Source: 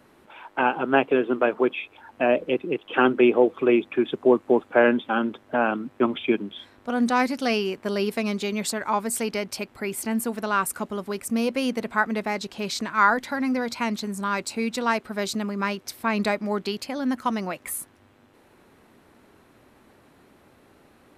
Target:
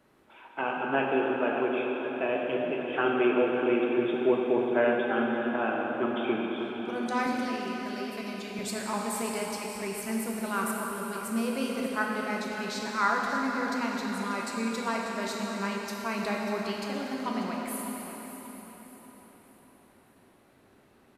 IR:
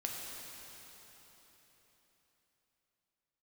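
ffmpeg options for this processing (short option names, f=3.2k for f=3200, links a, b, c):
-filter_complex "[0:a]aecho=1:1:590|1180|1770|2360:0.251|0.0955|0.0363|0.0138,asettb=1/sr,asplit=3[a][b][c];[a]atrim=end=7.264[d];[b]atrim=start=7.26:end=8.59,asetpts=PTS-STARTPTS,afade=t=in:d=0.004:c=qsin,afade=t=out:st=1.326:d=0.004:c=qsin,acrossover=split=270|1400[e][f][g];[e]acompressor=threshold=-34dB:ratio=4[h];[f]acompressor=threshold=-36dB:ratio=4[i];[g]acompressor=threshold=-35dB:ratio=4[j];[h][i][j]amix=inputs=3:normalize=0[k];[c]atrim=start=8.586[l];[d][k]acrossfade=d=0.004:c1=hsin:c2=qsin[m];[m][l]acrossfade=d=0.004:c1=qsin:c2=hsin[n];[1:a]atrim=start_sample=2205[o];[n][o]afir=irnorm=-1:irlink=0,volume=-7dB"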